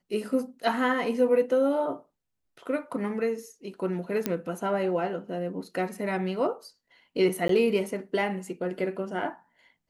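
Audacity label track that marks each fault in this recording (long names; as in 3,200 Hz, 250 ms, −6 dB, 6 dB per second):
4.260000	4.260000	click −12 dBFS
7.480000	7.490000	drop-out 13 ms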